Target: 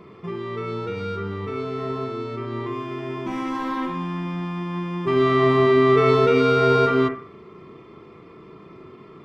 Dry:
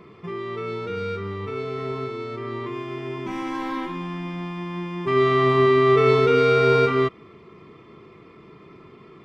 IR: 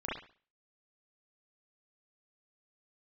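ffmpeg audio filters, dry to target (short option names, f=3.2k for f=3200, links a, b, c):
-filter_complex "[0:a]asplit=2[a][b];[b]lowpass=f=2.1k:w=0.5412,lowpass=f=2.1k:w=1.3066[c];[1:a]atrim=start_sample=2205,lowshelf=f=340:g=-6[d];[c][d]afir=irnorm=-1:irlink=0,volume=-6dB[e];[a][e]amix=inputs=2:normalize=0"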